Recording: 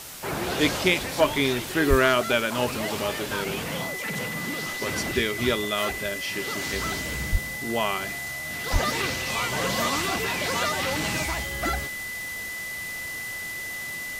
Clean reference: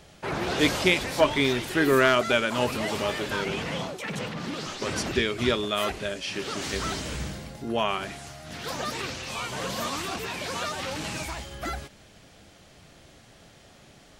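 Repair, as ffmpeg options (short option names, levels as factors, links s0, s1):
-filter_complex "[0:a]bandreject=f=2000:w=30,asplit=3[s0][s1][s2];[s0]afade=t=out:st=1.89:d=0.02[s3];[s1]highpass=f=140:w=0.5412,highpass=f=140:w=1.3066,afade=t=in:st=1.89:d=0.02,afade=t=out:st=2.01:d=0.02[s4];[s2]afade=t=in:st=2.01:d=0.02[s5];[s3][s4][s5]amix=inputs=3:normalize=0,asplit=3[s6][s7][s8];[s6]afade=t=out:st=7.31:d=0.02[s9];[s7]highpass=f=140:w=0.5412,highpass=f=140:w=1.3066,afade=t=in:st=7.31:d=0.02,afade=t=out:st=7.43:d=0.02[s10];[s8]afade=t=in:st=7.43:d=0.02[s11];[s9][s10][s11]amix=inputs=3:normalize=0,asplit=3[s12][s13][s14];[s12]afade=t=out:st=8.72:d=0.02[s15];[s13]highpass=f=140:w=0.5412,highpass=f=140:w=1.3066,afade=t=in:st=8.72:d=0.02,afade=t=out:st=8.84:d=0.02[s16];[s14]afade=t=in:st=8.84:d=0.02[s17];[s15][s16][s17]amix=inputs=3:normalize=0,afwtdn=0.011,asetnsamples=n=441:p=0,asendcmd='8.71 volume volume -5dB',volume=1"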